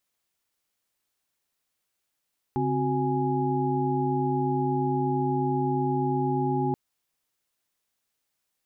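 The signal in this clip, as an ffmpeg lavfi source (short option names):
-f lavfi -i "aevalsrc='0.0376*(sin(2*PI*138.59*t)+sin(2*PI*261.63*t)+sin(2*PI*369.99*t)+sin(2*PI*830.61*t))':d=4.18:s=44100"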